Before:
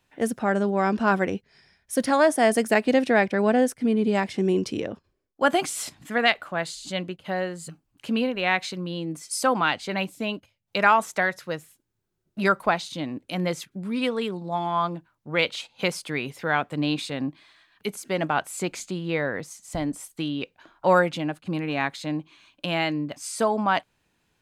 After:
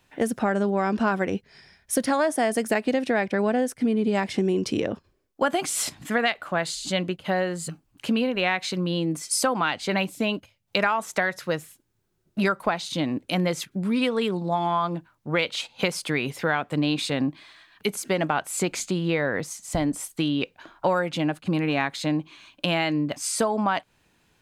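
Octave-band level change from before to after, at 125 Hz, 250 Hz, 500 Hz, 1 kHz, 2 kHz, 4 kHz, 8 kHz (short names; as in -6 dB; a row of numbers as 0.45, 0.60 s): +2.5, +1.0, -1.0, -2.0, -1.5, +1.5, +4.5 dB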